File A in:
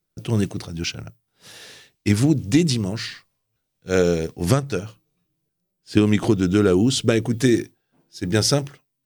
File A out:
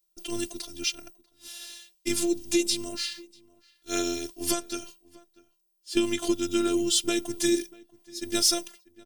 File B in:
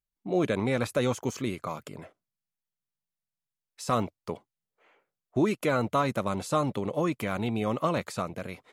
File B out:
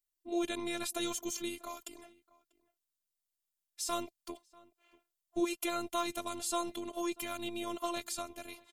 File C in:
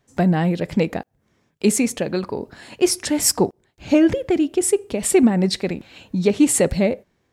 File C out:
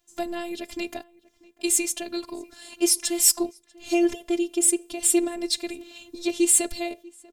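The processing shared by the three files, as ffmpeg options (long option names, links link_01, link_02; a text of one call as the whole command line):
ffmpeg -i in.wav -filter_complex "[0:a]asplit=2[link_01][link_02];[link_02]adelay=641.4,volume=-23dB,highshelf=frequency=4000:gain=-14.4[link_03];[link_01][link_03]amix=inputs=2:normalize=0,afftfilt=real='hypot(re,im)*cos(PI*b)':imag='0':win_size=512:overlap=0.75,aexciter=amount=2.3:drive=7.8:freq=2700,volume=-5.5dB" out.wav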